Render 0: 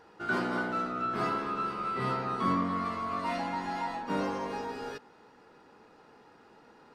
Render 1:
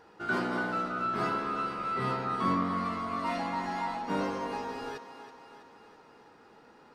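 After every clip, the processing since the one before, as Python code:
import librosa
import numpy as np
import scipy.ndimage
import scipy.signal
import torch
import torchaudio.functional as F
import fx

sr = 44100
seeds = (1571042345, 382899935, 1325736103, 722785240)

y = fx.echo_thinned(x, sr, ms=327, feedback_pct=59, hz=270.0, wet_db=-11.0)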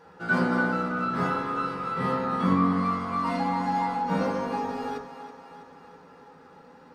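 y = fx.rev_fdn(x, sr, rt60_s=0.39, lf_ratio=1.4, hf_ratio=0.4, size_ms=35.0, drr_db=-2.0)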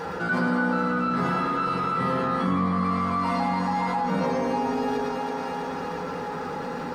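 y = x + 10.0 ** (-4.5 / 20.0) * np.pad(x, (int(110 * sr / 1000.0), 0))[:len(x)]
y = fx.env_flatten(y, sr, amount_pct=70)
y = y * librosa.db_to_amplitude(-3.0)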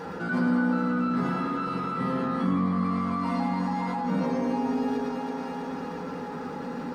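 y = fx.peak_eq(x, sr, hz=240.0, db=8.5, octaves=0.95)
y = y * librosa.db_to_amplitude(-6.0)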